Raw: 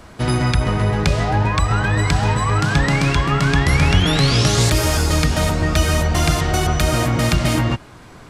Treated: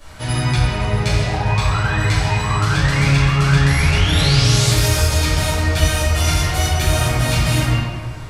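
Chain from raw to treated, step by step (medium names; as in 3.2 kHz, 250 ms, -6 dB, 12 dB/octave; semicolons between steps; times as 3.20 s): FFT filter 130 Hz 0 dB, 220 Hz -7 dB, 11 kHz +5 dB; in parallel at +2 dB: compression, threshold -24 dBFS, peak gain reduction 14 dB; on the sum: reverberation RT60 1.6 s, pre-delay 3 ms, DRR -13 dB; trim -15 dB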